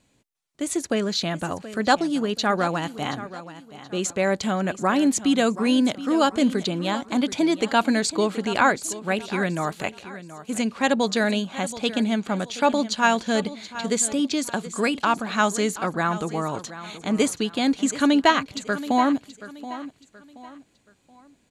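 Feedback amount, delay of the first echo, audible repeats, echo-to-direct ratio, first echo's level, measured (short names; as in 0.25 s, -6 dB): 34%, 0.727 s, 3, -14.0 dB, -14.5 dB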